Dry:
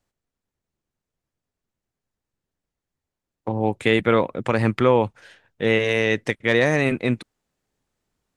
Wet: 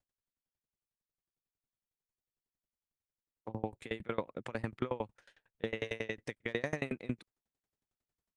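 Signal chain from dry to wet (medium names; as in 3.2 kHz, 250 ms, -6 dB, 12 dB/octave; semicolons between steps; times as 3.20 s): peak limiter -10 dBFS, peak gain reduction 7 dB; sawtooth tremolo in dB decaying 11 Hz, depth 28 dB; trim -8 dB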